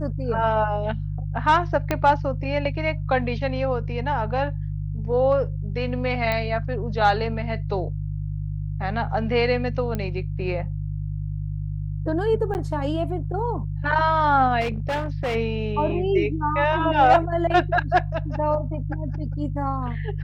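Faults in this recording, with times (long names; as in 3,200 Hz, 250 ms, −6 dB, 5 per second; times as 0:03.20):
mains hum 50 Hz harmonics 3 −28 dBFS
0:01.91: click −8 dBFS
0:06.32: click −12 dBFS
0:09.95: click −15 dBFS
0:12.54–0:12.55: drop-out 9.9 ms
0:14.60–0:15.36: clipping −21.5 dBFS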